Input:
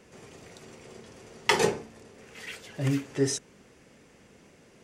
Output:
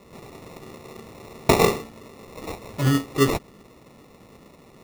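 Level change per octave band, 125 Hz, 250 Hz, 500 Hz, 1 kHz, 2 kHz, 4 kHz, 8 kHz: +7.5 dB, +7.5 dB, +6.5 dB, +7.0 dB, +2.0 dB, +2.5 dB, +1.5 dB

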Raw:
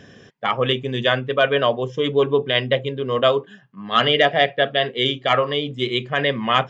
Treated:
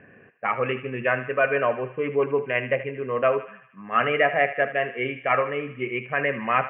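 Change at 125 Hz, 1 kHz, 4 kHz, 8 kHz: -8.5 dB, -3.5 dB, -19.5 dB, no reading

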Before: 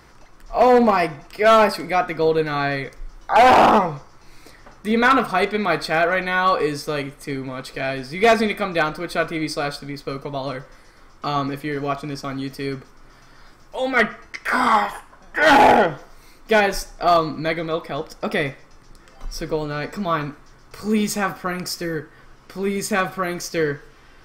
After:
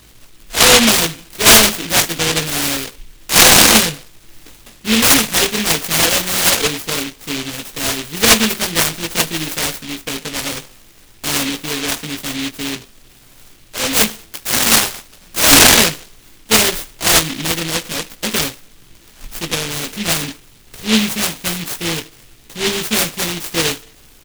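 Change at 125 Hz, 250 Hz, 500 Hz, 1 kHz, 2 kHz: +4.5 dB, +3.5 dB, -2.5 dB, -4.0 dB, +4.5 dB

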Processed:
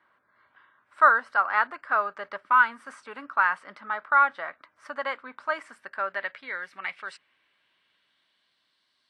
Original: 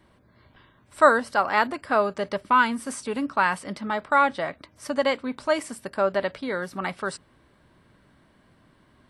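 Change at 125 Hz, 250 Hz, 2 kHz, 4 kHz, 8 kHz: under -20 dB, -19.0 dB, +1.5 dB, -10.0 dB, under -15 dB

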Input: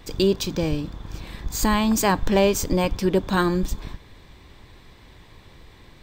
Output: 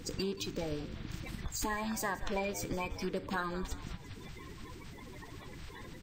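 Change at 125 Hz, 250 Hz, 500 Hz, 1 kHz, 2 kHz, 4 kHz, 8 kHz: -14.5 dB, -16.5 dB, -16.0 dB, -13.0 dB, -10.0 dB, -13.0 dB, -12.0 dB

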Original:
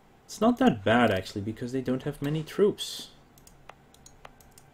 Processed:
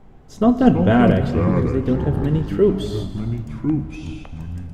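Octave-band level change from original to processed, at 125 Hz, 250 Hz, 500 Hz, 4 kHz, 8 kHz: +15.5 dB, +11.0 dB, +7.5 dB, -1.5 dB, no reading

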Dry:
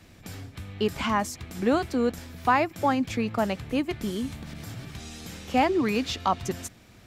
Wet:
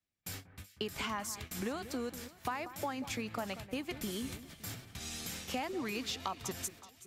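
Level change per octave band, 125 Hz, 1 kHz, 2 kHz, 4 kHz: -11.5 dB, -14.5 dB, -10.0 dB, -5.5 dB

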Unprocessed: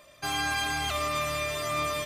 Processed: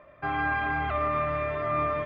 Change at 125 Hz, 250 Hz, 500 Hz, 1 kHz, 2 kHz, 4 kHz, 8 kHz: +3.5 dB, +3.5 dB, +3.5 dB, +3.5 dB, +0.5 dB, -16.5 dB, under -40 dB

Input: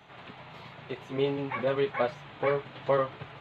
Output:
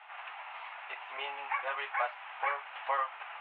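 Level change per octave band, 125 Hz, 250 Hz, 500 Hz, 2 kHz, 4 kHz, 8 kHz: under -40 dB, under -30 dB, -15.5 dB, +2.0 dB, -2.5 dB, no reading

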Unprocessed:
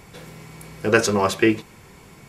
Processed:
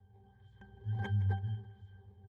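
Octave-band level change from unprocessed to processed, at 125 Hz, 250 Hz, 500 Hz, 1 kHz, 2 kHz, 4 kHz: -1.5 dB, -26.5 dB, -33.0 dB, -23.0 dB, -26.0 dB, under -25 dB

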